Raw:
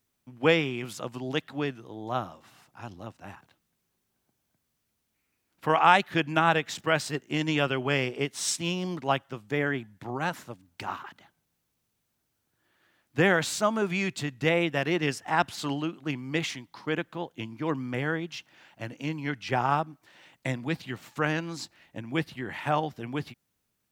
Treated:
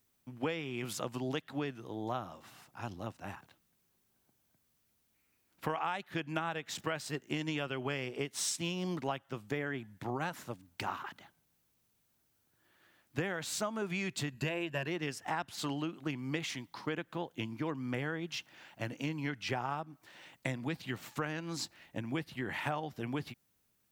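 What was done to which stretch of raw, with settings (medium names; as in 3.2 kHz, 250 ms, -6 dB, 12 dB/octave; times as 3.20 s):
14.32–14.88 s: rippled EQ curve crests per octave 1.4, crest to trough 10 dB
whole clip: treble shelf 12 kHz +5.5 dB; compression 8:1, threshold -32 dBFS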